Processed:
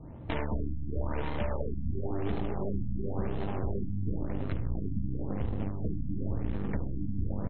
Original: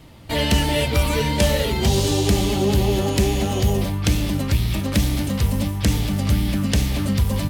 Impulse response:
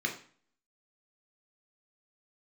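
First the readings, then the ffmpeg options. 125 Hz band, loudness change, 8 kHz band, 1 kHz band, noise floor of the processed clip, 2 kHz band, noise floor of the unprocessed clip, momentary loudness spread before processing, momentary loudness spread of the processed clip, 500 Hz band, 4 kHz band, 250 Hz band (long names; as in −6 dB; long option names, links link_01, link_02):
−13.5 dB, −14.5 dB, below −40 dB, −14.0 dB, −34 dBFS, −18.5 dB, −26 dBFS, 3 LU, 2 LU, −14.0 dB, −29.5 dB, −13.0 dB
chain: -filter_complex "[0:a]aeval=exprs='0.398*(cos(1*acos(clip(val(0)/0.398,-1,1)))-cos(1*PI/2))+0.1*(cos(6*acos(clip(val(0)/0.398,-1,1)))-cos(6*PI/2))':channel_layout=same,asplit=2[link_01][link_02];[link_02]aecho=0:1:178:0.2[link_03];[link_01][link_03]amix=inputs=2:normalize=0,acompressor=threshold=-30dB:ratio=5,asplit=2[link_04][link_05];[link_05]aecho=0:1:70:0.473[link_06];[link_04][link_06]amix=inputs=2:normalize=0,adynamicsmooth=sensitivity=4.5:basefreq=590,afftfilt=real='re*lt(b*sr/1024,290*pow(4300/290,0.5+0.5*sin(2*PI*0.95*pts/sr)))':imag='im*lt(b*sr/1024,290*pow(4300/290,0.5+0.5*sin(2*PI*0.95*pts/sr)))':win_size=1024:overlap=0.75"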